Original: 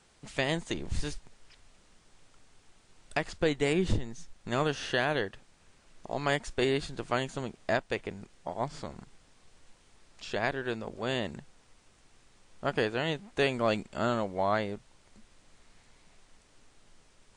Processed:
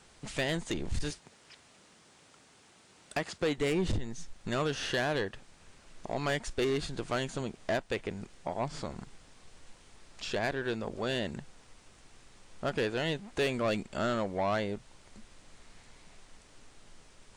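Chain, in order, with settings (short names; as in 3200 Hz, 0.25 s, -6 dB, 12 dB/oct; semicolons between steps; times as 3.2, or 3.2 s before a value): 1.1–3.58 HPF 140 Hz 12 dB/oct; in parallel at -3 dB: compressor, threshold -38 dBFS, peak gain reduction 16.5 dB; on the sum: soft clip -23.5 dBFS, distortion -11 dB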